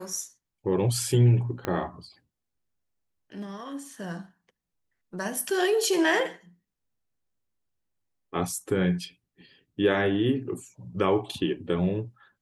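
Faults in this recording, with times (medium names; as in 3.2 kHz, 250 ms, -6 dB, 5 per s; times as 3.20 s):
1.65 s: pop -15 dBFS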